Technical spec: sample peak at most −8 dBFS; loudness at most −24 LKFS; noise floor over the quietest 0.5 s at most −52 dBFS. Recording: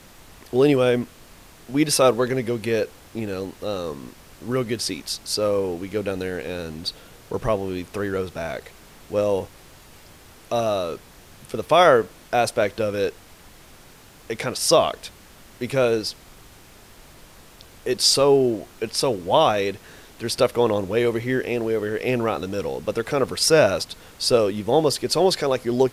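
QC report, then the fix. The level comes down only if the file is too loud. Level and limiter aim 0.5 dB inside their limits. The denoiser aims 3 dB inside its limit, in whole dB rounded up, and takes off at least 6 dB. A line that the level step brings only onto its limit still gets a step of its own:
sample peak −4.5 dBFS: out of spec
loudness −22.0 LKFS: out of spec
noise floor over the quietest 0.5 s −48 dBFS: out of spec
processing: broadband denoise 6 dB, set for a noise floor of −48 dBFS
level −2.5 dB
brickwall limiter −8.5 dBFS

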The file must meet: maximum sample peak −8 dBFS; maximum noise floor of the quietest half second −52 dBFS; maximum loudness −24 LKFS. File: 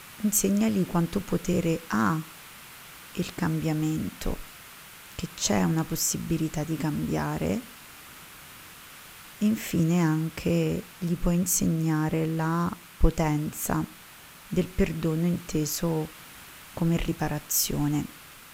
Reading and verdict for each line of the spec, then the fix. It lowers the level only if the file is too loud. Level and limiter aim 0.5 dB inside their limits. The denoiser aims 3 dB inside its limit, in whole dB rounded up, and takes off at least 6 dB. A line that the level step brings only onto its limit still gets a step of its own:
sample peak −7.5 dBFS: out of spec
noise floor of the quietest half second −48 dBFS: out of spec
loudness −27.5 LKFS: in spec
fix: broadband denoise 7 dB, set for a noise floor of −48 dBFS
brickwall limiter −8.5 dBFS

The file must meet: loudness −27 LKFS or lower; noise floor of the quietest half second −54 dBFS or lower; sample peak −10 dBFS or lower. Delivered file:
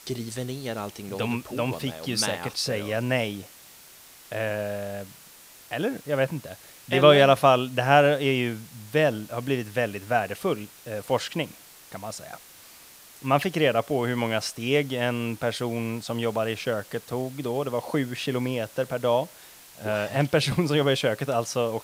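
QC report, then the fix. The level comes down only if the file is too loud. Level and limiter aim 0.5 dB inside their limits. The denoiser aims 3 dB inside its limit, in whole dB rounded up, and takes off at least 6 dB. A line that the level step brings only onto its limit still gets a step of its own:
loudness −25.5 LKFS: out of spec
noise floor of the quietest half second −50 dBFS: out of spec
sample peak −2.0 dBFS: out of spec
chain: broadband denoise 6 dB, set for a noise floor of −50 dBFS
level −2 dB
brickwall limiter −10.5 dBFS

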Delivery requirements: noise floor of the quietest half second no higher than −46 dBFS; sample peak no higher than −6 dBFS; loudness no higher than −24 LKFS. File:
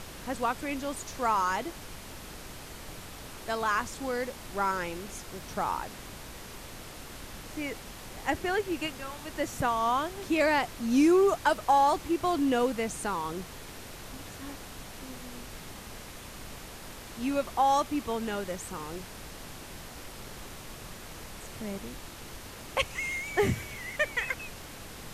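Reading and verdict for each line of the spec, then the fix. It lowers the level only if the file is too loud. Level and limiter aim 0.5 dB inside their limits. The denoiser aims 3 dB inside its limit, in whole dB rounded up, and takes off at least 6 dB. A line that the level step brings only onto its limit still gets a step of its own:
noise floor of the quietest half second −44 dBFS: out of spec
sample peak −11.5 dBFS: in spec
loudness −30.0 LKFS: in spec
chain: broadband denoise 6 dB, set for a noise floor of −44 dBFS

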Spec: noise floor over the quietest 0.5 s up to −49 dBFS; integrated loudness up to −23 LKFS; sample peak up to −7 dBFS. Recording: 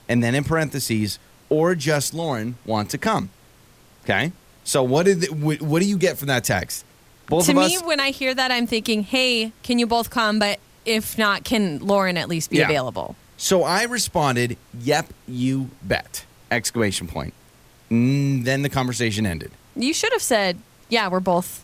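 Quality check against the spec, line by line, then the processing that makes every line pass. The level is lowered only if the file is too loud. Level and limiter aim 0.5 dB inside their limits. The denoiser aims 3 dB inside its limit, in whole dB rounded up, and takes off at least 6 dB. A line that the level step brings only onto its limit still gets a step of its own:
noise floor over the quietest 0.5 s −52 dBFS: in spec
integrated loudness −21.0 LKFS: out of spec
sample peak −3.0 dBFS: out of spec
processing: level −2.5 dB
brickwall limiter −7.5 dBFS

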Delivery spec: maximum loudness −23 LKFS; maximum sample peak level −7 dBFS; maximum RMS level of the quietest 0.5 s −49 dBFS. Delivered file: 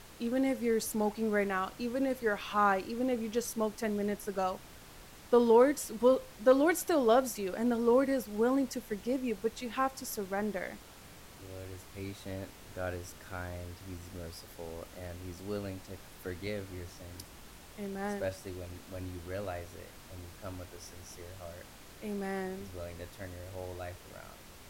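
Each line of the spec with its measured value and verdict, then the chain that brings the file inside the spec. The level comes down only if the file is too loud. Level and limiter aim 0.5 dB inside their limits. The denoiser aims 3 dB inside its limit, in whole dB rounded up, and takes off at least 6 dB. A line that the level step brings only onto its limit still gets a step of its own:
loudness −32.5 LKFS: in spec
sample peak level −13.5 dBFS: in spec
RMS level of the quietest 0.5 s −52 dBFS: in spec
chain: no processing needed

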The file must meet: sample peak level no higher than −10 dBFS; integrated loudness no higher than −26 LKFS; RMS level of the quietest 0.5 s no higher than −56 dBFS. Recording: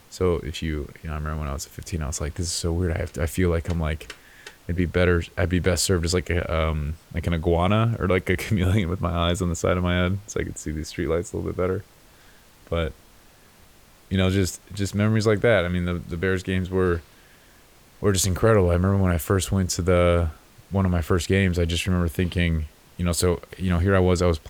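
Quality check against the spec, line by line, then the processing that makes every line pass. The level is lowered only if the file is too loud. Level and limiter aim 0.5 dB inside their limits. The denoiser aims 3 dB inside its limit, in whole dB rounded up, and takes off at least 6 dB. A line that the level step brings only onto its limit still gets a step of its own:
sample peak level −6.0 dBFS: out of spec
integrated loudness −24.0 LKFS: out of spec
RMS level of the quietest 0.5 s −53 dBFS: out of spec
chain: broadband denoise 6 dB, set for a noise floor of −53 dBFS
level −2.5 dB
brickwall limiter −10.5 dBFS

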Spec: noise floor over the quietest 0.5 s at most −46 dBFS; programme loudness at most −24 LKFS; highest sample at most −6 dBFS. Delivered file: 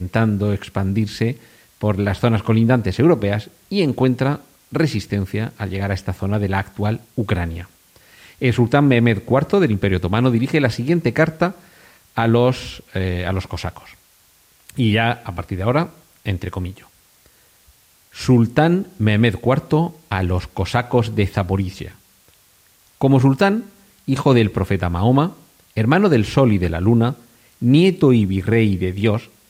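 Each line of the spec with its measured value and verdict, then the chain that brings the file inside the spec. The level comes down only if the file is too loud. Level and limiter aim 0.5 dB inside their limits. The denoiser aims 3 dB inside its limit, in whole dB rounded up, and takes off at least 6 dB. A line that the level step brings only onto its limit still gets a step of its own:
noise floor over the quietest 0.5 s −55 dBFS: in spec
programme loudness −18.5 LKFS: out of spec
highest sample −4.0 dBFS: out of spec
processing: level −6 dB

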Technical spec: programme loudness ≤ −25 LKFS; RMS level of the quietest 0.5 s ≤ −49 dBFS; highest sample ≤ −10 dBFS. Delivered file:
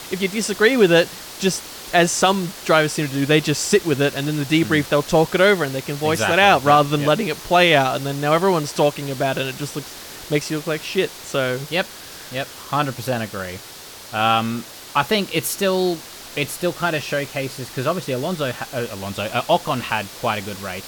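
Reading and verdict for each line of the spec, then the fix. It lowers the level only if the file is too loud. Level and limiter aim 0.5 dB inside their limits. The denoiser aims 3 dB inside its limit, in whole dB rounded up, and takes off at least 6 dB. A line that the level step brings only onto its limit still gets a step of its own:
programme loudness −20.0 LKFS: out of spec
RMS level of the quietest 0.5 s −39 dBFS: out of spec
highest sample −3.0 dBFS: out of spec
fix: broadband denoise 8 dB, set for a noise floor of −39 dBFS
level −5.5 dB
brickwall limiter −10.5 dBFS

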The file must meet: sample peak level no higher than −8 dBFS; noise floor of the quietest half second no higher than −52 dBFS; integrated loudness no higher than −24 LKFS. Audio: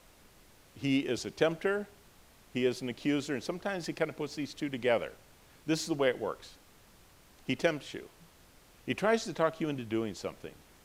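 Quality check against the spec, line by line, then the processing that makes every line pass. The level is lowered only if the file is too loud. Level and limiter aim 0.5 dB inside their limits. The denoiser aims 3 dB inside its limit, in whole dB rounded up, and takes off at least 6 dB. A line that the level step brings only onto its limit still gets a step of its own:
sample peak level −13.0 dBFS: in spec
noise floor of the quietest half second −59 dBFS: in spec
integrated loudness −33.0 LKFS: in spec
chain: no processing needed

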